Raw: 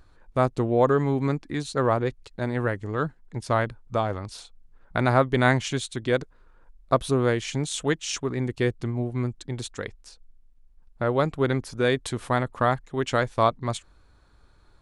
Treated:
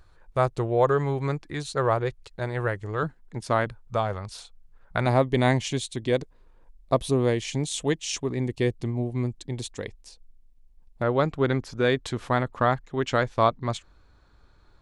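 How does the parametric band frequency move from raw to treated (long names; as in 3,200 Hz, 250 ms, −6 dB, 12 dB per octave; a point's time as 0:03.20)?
parametric band −12 dB 0.46 octaves
250 Hz
from 0:03.03 83 Hz
from 0:03.66 290 Hz
from 0:05.06 1,400 Hz
from 0:11.02 9,600 Hz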